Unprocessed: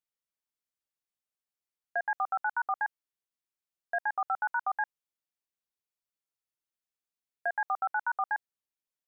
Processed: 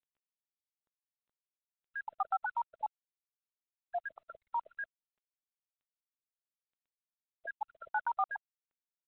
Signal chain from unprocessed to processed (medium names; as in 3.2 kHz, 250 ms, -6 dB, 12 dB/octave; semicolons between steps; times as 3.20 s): random holes in the spectrogram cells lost 61%; low-pass 1.4 kHz 24 dB/octave; 2.04–4.27 s: level-controlled noise filter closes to 380 Hz, open at -32 dBFS; µ-law 64 kbps 8 kHz